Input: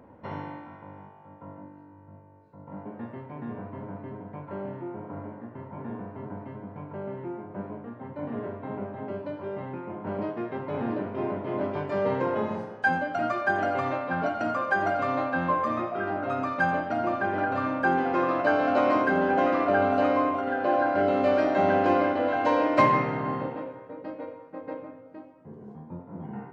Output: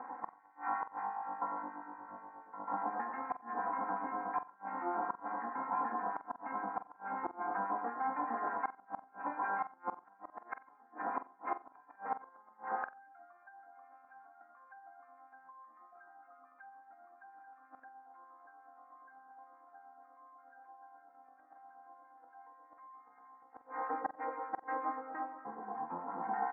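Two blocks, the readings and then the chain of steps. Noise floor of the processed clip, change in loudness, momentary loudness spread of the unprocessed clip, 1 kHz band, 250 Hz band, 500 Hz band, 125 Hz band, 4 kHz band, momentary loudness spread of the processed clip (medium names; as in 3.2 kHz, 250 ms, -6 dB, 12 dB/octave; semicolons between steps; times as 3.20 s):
-64 dBFS, -13.0 dB, 18 LU, -9.5 dB, -20.5 dB, -21.0 dB, under -25 dB, under -35 dB, 22 LU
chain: low-pass 1.9 kHz 24 dB/octave; low-pass that closes with the level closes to 1.5 kHz, closed at -22 dBFS; comb 3.8 ms, depth 85%; compression 4:1, threshold -35 dBFS, peak gain reduction 19 dB; static phaser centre 1.4 kHz, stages 4; harmonic tremolo 8.4 Hz, depth 70%, crossover 1.3 kHz; resonant high-pass 680 Hz, resonance Q 4.9; inverted gate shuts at -36 dBFS, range -32 dB; flutter echo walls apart 7.8 m, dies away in 0.23 s; trim +12 dB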